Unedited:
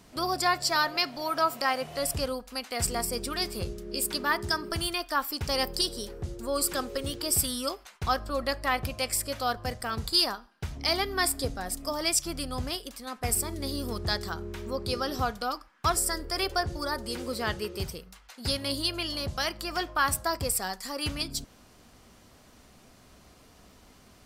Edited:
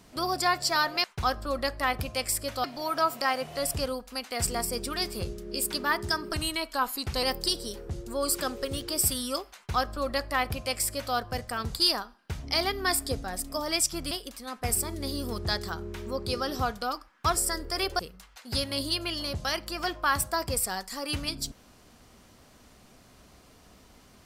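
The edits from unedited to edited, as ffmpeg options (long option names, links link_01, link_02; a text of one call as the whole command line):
ffmpeg -i in.wav -filter_complex "[0:a]asplit=7[link_01][link_02][link_03][link_04][link_05][link_06][link_07];[link_01]atrim=end=1.042[link_08];[link_02]atrim=start=7.878:end=9.482[link_09];[link_03]atrim=start=1.038:end=4.734[link_10];[link_04]atrim=start=4.73:end=5.56,asetpts=PTS-STARTPTS,asetrate=40572,aresample=44100[link_11];[link_05]atrim=start=5.556:end=12.442[link_12];[link_06]atrim=start=12.708:end=16.592[link_13];[link_07]atrim=start=17.918[link_14];[link_08][link_09]acrossfade=duration=0.004:curve1=hsin:curve2=hsin[link_15];[link_15][link_10]acrossfade=duration=0.004:curve1=hsin:curve2=hsin[link_16];[link_16][link_11]acrossfade=duration=0.004:curve1=hsin:curve2=hsin[link_17];[link_17][link_12]acrossfade=duration=0.004:curve1=hsin:curve2=hsin[link_18];[link_18][link_13]acrossfade=duration=0.004:curve1=hsin:curve2=hsin[link_19];[link_19][link_14]acrossfade=duration=0.004:curve1=hsin:curve2=hsin" out.wav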